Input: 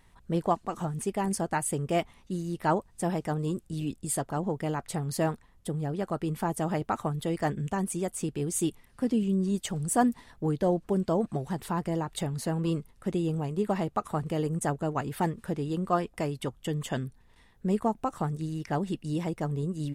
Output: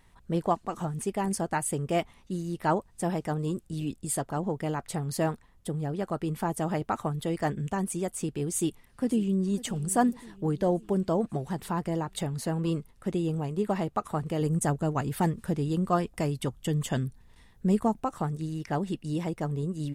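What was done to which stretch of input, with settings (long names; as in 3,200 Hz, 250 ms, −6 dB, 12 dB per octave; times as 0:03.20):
0:08.54–0:09.58: delay throw 550 ms, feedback 55%, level −17.5 dB
0:14.41–0:18.00: bass and treble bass +5 dB, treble +4 dB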